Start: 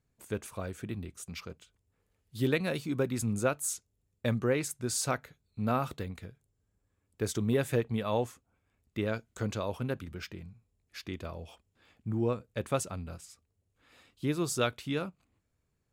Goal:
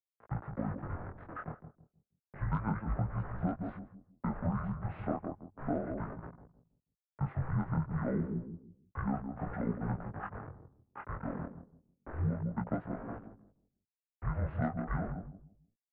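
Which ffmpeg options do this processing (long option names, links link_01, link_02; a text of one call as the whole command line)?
ffmpeg -i in.wav -filter_complex "[0:a]acontrast=66,acrusher=bits=5:mix=0:aa=0.000001,highpass=frequency=320:width_type=q:width=0.5412,highpass=frequency=320:width_type=q:width=1.307,lowpass=frequency=2900:width_type=q:width=0.5176,lowpass=frequency=2900:width_type=q:width=0.7071,lowpass=frequency=2900:width_type=q:width=1.932,afreqshift=-200,aeval=exprs='0.316*(cos(1*acos(clip(val(0)/0.316,-1,1)))-cos(1*PI/2))+0.0282*(cos(2*acos(clip(val(0)/0.316,-1,1)))-cos(2*PI/2))+0.0126*(cos(4*acos(clip(val(0)/0.316,-1,1)))-cos(4*PI/2))+0.00631*(cos(5*acos(clip(val(0)/0.316,-1,1)))-cos(5*PI/2))':channel_layout=same,asplit=2[link_01][link_02];[link_02]adelay=161,lowpass=frequency=840:poles=1,volume=-8dB,asplit=2[link_03][link_04];[link_04]adelay=161,lowpass=frequency=840:poles=1,volume=0.33,asplit=2[link_05][link_06];[link_06]adelay=161,lowpass=frequency=840:poles=1,volume=0.33,asplit=2[link_07][link_08];[link_08]adelay=161,lowpass=frequency=840:poles=1,volume=0.33[link_09];[link_01][link_03][link_05][link_07][link_09]amix=inputs=5:normalize=0,asetrate=26222,aresample=44100,atempo=1.68179,acompressor=threshold=-26dB:ratio=6,flanger=delay=17:depth=8:speed=0.31" out.wav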